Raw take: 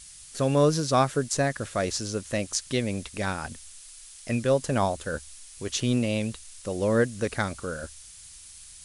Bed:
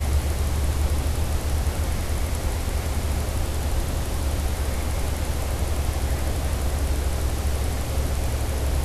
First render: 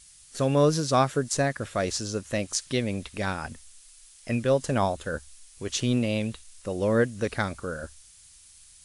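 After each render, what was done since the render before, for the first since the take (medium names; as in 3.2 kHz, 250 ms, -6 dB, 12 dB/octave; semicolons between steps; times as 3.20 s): noise print and reduce 6 dB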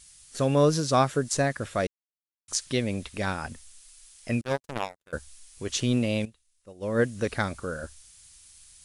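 1.87–2.48 s: mute; 4.41–5.13 s: power-law waveshaper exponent 3; 6.25–7.02 s: upward expansion 2.5:1, over -33 dBFS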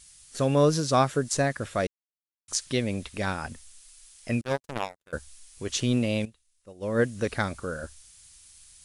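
no audible change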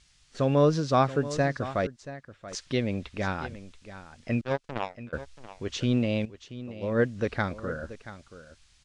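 distance through air 150 m; delay 681 ms -14.5 dB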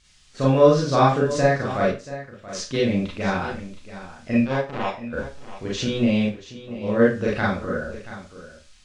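Schroeder reverb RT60 0.3 s, combs from 30 ms, DRR -5.5 dB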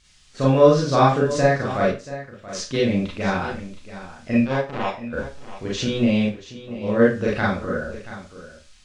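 trim +1 dB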